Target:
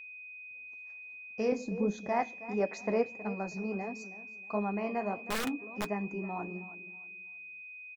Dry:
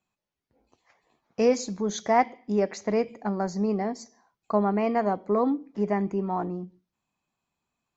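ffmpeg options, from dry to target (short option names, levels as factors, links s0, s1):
-filter_complex "[0:a]asettb=1/sr,asplit=3[s0][s1][s2];[s0]atrim=end=2.604[s3];[s1]atrim=start=2.6:end=3.08,asetpts=PTS-STARTPTS,afade=t=in:d=0.004:c=qsin,afade=t=out:st=0.476:d=0.004:c=qsin,equalizer=f=720:w=0.37:g=6.5[s4];[s2]atrim=start=3.076[s5];[s3][s4]acrossfade=d=0.004:c1=hsin:c2=qsin[s6];[s6][s5]acrossfade=d=0.004:c1=qsin:c2=hsin,asplit=2[s7][s8];[s8]adelay=319,lowpass=f=4800:p=1,volume=0.168,asplit=2[s9][s10];[s10]adelay=319,lowpass=f=4800:p=1,volume=0.3,asplit=2[s11][s12];[s12]adelay=319,lowpass=f=4800:p=1,volume=0.3[s13];[s9][s11][s13]amix=inputs=3:normalize=0[s14];[s7][s14]amix=inputs=2:normalize=0,asettb=1/sr,asplit=3[s15][s16][s17];[s15]atrim=end=5.284[s18];[s16]atrim=start=5.28:end=5.91,asetpts=PTS-STARTPTS,afade=t=in:d=0.004:c=qsin,afade=t=out:st=0.626:d=0.004:c=qsin,aeval=exprs='(mod(7.5*val(0)+1,2)-1)/7.5':c=same[s19];[s17]atrim=start=5.906[s20];[s18][s19]acrossfade=d=0.004:c1=hsin:c2=qsin[s21];[s21][s20]acrossfade=d=0.004:c1=qsin:c2=hsin,flanger=delay=3.8:depth=8.7:regen=-47:speed=1.5:shape=sinusoidal,aeval=exprs='val(0)+0.0112*sin(2*PI*2500*n/s)':c=same,asettb=1/sr,asplit=3[s22][s23][s24];[s22]atrim=end=1.524[s25];[s23]atrim=start=1.52:end=2.09,asetpts=PTS-STARTPTS,afade=t=in:d=0.004:c=qsin,afade=t=out:st=0.566:d=0.004:c=qsin,tiltshelf=f=1200:g=8.5[s26];[s24]atrim=start=2.086[s27];[s25][s26]acrossfade=d=0.004:c1=hsin:c2=qsin[s28];[s28][s27]acrossfade=d=0.004:c1=qsin:c2=hsin,volume=0.531"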